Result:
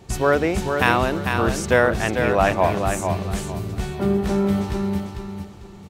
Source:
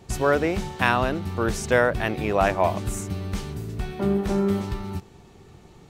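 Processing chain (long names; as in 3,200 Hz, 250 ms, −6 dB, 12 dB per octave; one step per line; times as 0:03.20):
0:00.67–0:01.40: high-shelf EQ 12,000 Hz +8.5 dB
repeating echo 447 ms, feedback 28%, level −6 dB
level +2.5 dB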